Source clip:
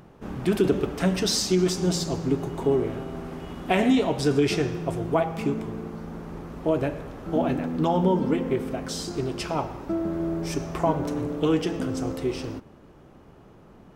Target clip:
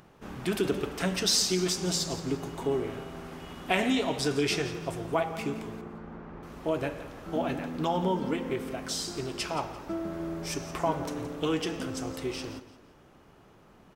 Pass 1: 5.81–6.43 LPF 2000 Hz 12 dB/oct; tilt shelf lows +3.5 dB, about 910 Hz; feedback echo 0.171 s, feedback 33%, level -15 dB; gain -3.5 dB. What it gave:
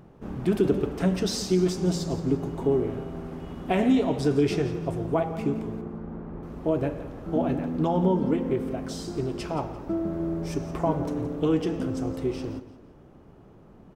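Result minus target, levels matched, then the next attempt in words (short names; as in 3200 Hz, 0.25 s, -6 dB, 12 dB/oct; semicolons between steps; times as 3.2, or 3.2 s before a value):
1000 Hz band -3.0 dB
5.81–6.43 LPF 2000 Hz 12 dB/oct; tilt shelf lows -4.5 dB, about 910 Hz; feedback echo 0.171 s, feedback 33%, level -15 dB; gain -3.5 dB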